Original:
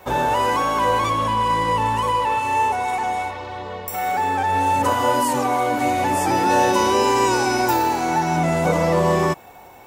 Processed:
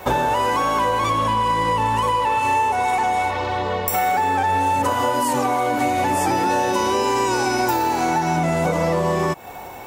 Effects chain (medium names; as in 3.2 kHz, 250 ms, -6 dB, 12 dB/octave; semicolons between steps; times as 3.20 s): compression 10:1, threshold -25 dBFS, peak gain reduction 12.5 dB; trim +8.5 dB